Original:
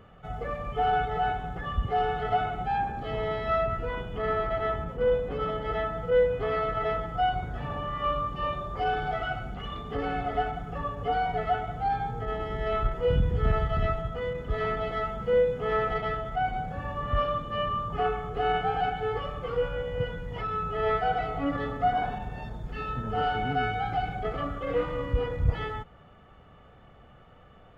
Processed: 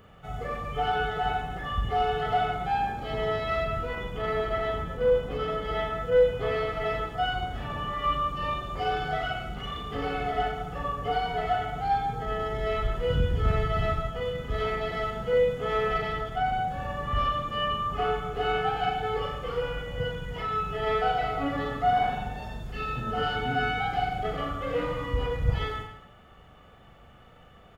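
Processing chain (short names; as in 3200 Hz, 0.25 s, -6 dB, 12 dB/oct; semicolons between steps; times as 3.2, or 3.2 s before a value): high shelf 3600 Hz +11.5 dB; on a send: reverse bouncing-ball echo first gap 40 ms, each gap 1.2×, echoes 5; on the sum: gain -2 dB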